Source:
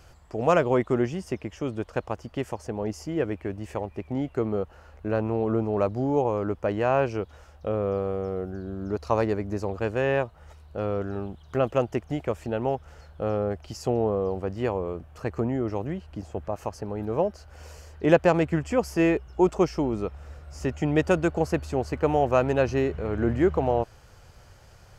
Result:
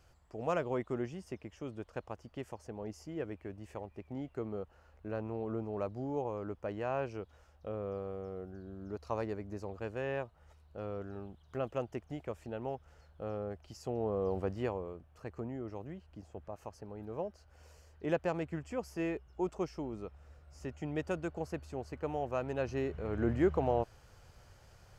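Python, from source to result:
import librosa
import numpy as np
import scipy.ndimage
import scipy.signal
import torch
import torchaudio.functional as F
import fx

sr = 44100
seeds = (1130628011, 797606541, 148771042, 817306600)

y = fx.gain(x, sr, db=fx.line((13.9, -12.5), (14.4, -4.0), (14.99, -14.0), (22.41, -14.0), (23.22, -7.0)))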